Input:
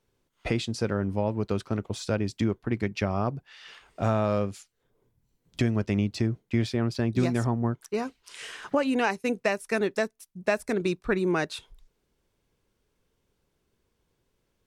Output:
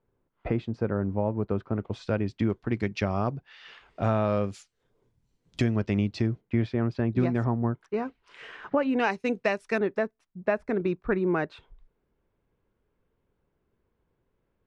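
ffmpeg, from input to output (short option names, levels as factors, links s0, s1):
-af "asetnsamples=n=441:p=0,asendcmd='1.79 lowpass f 2700;2.5 lowpass f 6200;3.33 lowpass f 3800;4.44 lowpass f 7400;5.64 lowpass f 4400;6.41 lowpass f 2100;9 lowpass f 4200;9.78 lowpass f 1800',lowpass=1400"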